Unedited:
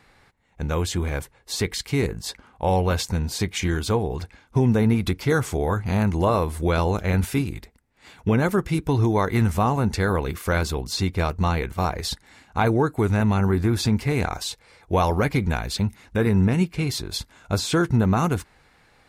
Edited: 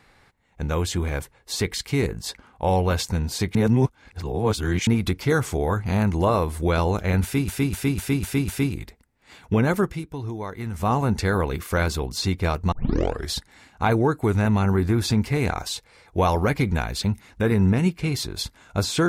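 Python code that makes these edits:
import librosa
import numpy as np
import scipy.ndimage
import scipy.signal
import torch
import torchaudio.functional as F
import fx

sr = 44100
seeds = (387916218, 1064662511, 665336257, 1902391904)

y = fx.edit(x, sr, fx.reverse_span(start_s=3.55, length_s=1.32),
    fx.repeat(start_s=7.23, length_s=0.25, count=6),
    fx.fade_down_up(start_s=8.57, length_s=1.1, db=-11.0, fade_s=0.21),
    fx.tape_start(start_s=11.47, length_s=0.61), tone=tone)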